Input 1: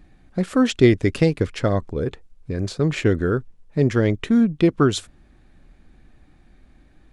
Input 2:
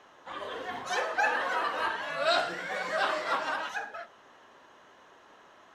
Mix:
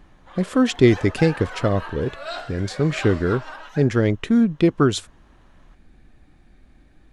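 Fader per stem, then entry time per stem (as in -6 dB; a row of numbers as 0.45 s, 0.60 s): 0.0 dB, -5.5 dB; 0.00 s, 0.00 s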